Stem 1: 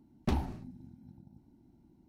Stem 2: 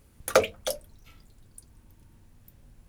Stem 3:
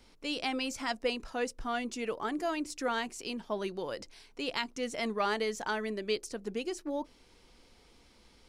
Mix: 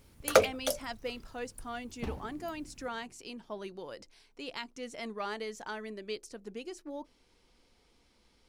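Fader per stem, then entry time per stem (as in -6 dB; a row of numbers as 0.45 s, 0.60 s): -8.5 dB, -1.5 dB, -6.5 dB; 1.75 s, 0.00 s, 0.00 s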